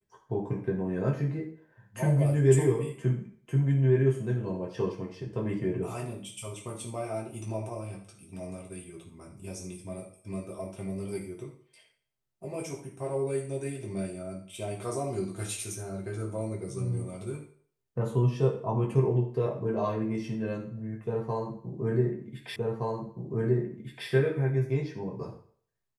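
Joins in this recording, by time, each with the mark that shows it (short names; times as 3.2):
22.56 repeat of the last 1.52 s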